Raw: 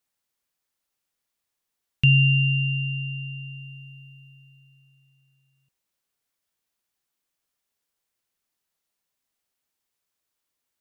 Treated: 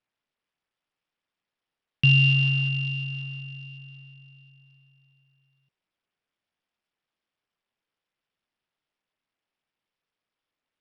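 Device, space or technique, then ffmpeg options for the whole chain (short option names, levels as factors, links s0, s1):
Bluetooth headset: -af "highpass=110,aresample=8000,aresample=44100" -ar 44100 -c:a sbc -b:a 64k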